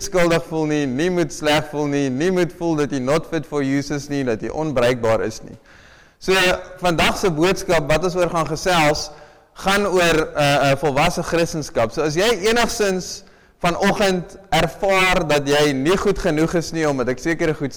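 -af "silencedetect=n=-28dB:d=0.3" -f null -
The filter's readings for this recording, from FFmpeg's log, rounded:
silence_start: 5.53
silence_end: 6.23 | silence_duration: 0.70
silence_start: 9.11
silence_end: 9.59 | silence_duration: 0.48
silence_start: 13.19
silence_end: 13.64 | silence_duration: 0.45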